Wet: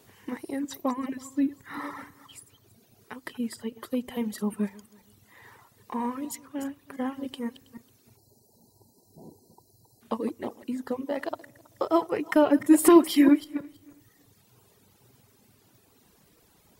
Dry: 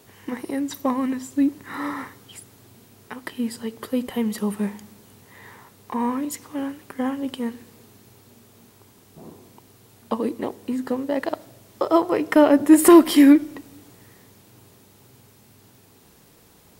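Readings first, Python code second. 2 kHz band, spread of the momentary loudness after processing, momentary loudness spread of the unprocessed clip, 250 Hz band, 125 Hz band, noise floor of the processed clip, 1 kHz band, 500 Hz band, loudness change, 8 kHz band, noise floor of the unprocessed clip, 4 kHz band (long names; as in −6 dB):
−6.0 dB, 18 LU, 19 LU, −6.0 dB, −5.5 dB, −63 dBFS, −5.5 dB, −5.5 dB, −6.0 dB, −5.5 dB, −54 dBFS, −5.5 dB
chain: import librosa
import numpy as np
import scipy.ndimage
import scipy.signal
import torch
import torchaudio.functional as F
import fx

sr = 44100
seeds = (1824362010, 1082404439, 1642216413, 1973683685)

y = fx.reverse_delay_fb(x, sr, ms=162, feedback_pct=44, wet_db=-9.0)
y = fx.spec_erase(y, sr, start_s=8.17, length_s=1.84, low_hz=1000.0, high_hz=3900.0)
y = fx.dereverb_blind(y, sr, rt60_s=1.5)
y = y * 10.0 ** (-5.0 / 20.0)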